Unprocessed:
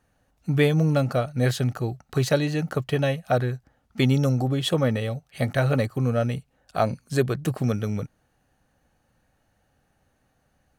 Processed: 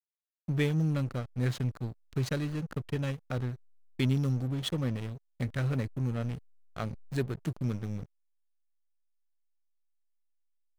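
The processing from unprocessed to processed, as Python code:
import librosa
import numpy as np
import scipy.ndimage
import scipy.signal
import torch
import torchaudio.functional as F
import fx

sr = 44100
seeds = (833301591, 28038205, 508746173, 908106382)

y = fx.peak_eq(x, sr, hz=690.0, db=-13.0, octaves=1.1)
y = fx.backlash(y, sr, play_db=-26.0)
y = y * 10.0 ** (-5.5 / 20.0)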